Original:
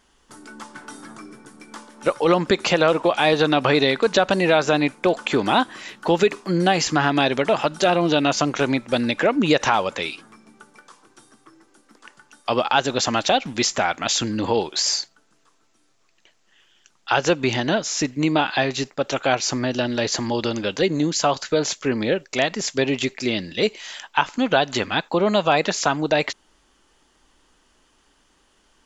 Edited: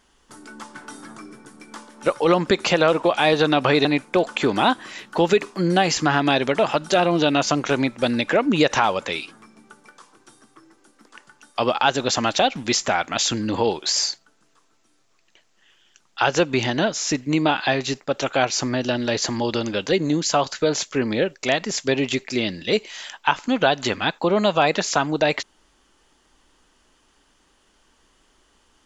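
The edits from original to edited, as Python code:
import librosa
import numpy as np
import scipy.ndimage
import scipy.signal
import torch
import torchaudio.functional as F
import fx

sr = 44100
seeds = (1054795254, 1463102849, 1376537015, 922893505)

y = fx.edit(x, sr, fx.cut(start_s=3.85, length_s=0.9), tone=tone)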